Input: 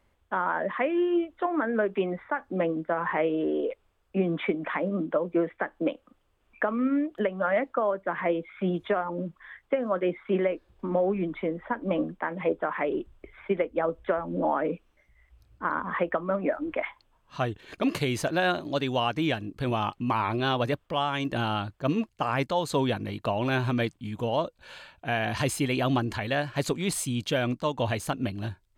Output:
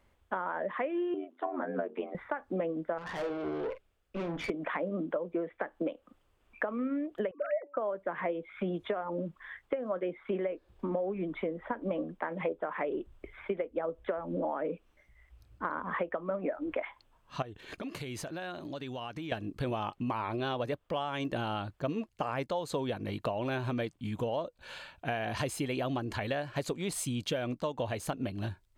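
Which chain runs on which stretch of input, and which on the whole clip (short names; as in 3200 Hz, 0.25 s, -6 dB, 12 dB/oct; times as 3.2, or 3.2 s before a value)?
1.14–2.15 notches 60/120/180/240/300/360/420/480/540 Hz + ring modulator 44 Hz + rippled Chebyshev high-pass 180 Hz, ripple 6 dB
2.98–4.5 bell 990 Hz -7 dB 0.62 oct + tube stage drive 33 dB, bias 0.7 + doubler 46 ms -10 dB
7.31–7.77 sine-wave speech + de-hum 287.1 Hz, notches 3
17.42–19.32 compressor, threshold -37 dBFS + mismatched tape noise reduction encoder only
whole clip: dynamic EQ 530 Hz, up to +5 dB, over -38 dBFS, Q 1.2; compressor 5:1, threshold -31 dBFS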